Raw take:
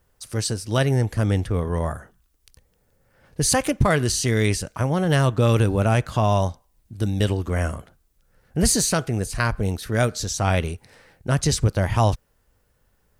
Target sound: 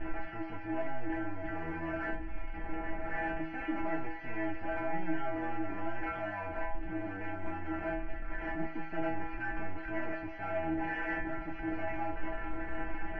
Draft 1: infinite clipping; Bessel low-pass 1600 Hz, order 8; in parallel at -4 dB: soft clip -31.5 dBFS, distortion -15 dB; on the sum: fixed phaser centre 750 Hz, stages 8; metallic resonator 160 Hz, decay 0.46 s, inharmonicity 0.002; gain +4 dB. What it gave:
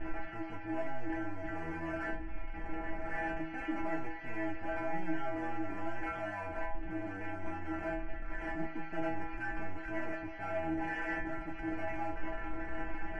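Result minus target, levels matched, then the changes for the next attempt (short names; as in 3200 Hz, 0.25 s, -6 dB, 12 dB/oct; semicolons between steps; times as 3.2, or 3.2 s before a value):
soft clip: distortion +11 dB
change: soft clip -23 dBFS, distortion -26 dB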